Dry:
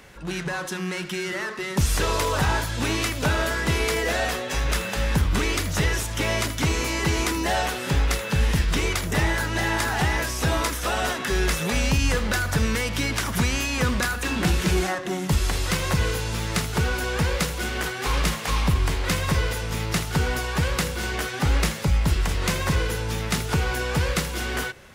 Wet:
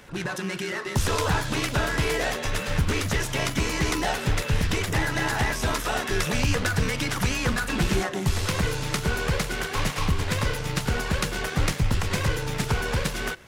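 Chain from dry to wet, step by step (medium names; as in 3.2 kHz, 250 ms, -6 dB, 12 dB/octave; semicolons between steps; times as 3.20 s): granular stretch 0.54×, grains 27 ms; loudspeaker Doppler distortion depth 0.18 ms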